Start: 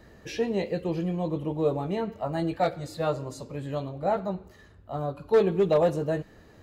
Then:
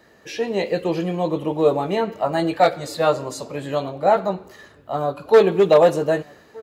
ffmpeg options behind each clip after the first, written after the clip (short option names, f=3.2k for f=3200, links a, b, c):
-filter_complex "[0:a]highpass=f=450:p=1,dynaudnorm=f=150:g=7:m=8dB,asplit=2[a][b];[b]adelay=1224,volume=-25dB,highshelf=f=4k:g=-27.6[c];[a][c]amix=inputs=2:normalize=0,volume=3.5dB"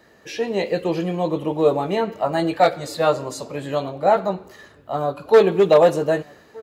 -af anull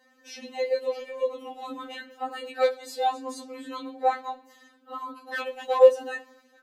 -af "afftfilt=real='re*3.46*eq(mod(b,12),0)':imag='im*3.46*eq(mod(b,12),0)':win_size=2048:overlap=0.75,volume=-5.5dB"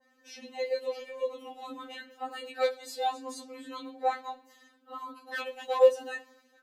-af "adynamicequalizer=threshold=0.0112:dfrequency=1900:dqfactor=0.7:tfrequency=1900:tqfactor=0.7:attack=5:release=100:ratio=0.375:range=2:mode=boostabove:tftype=highshelf,volume=-5dB"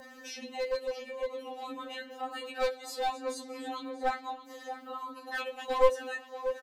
-filter_complex "[0:a]acompressor=mode=upward:threshold=-36dB:ratio=2.5,asplit=2[a][b];[b]adelay=635,lowpass=f=3.3k:p=1,volume=-12dB,asplit=2[c][d];[d]adelay=635,lowpass=f=3.3k:p=1,volume=0.48,asplit=2[e][f];[f]adelay=635,lowpass=f=3.3k:p=1,volume=0.48,asplit=2[g][h];[h]adelay=635,lowpass=f=3.3k:p=1,volume=0.48,asplit=2[i][j];[j]adelay=635,lowpass=f=3.3k:p=1,volume=0.48[k];[a][c][e][g][i][k]amix=inputs=6:normalize=0,aeval=exprs='clip(val(0),-1,0.0335)':c=same"